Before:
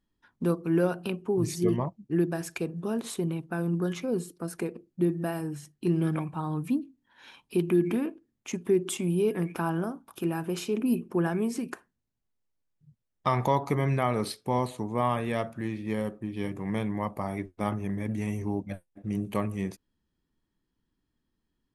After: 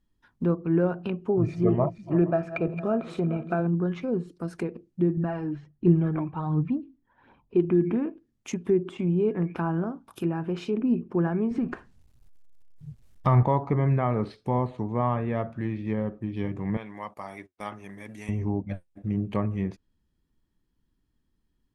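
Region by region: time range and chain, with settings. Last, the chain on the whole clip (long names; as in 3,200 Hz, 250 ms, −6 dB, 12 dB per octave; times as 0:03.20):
0:01.29–0:03.67: feedback delay that plays each chunk backwards 231 ms, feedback 49%, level −13 dB + hollow resonant body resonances 650/1,300/2,400 Hz, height 13 dB, ringing for 25 ms
0:05.17–0:07.65: low-pass that shuts in the quiet parts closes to 770 Hz, open at −24.5 dBFS + phase shifter 1.4 Hz, delay 3.4 ms, feedback 45% + high-frequency loss of the air 55 metres
0:11.51–0:13.43: mu-law and A-law mismatch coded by mu + low-shelf EQ 140 Hz +10.5 dB
0:16.77–0:18.29: high-pass filter 1,100 Hz 6 dB per octave + noise gate −53 dBFS, range −13 dB
whole clip: treble cut that deepens with the level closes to 1,700 Hz, closed at −25.5 dBFS; low-shelf EQ 130 Hz +9 dB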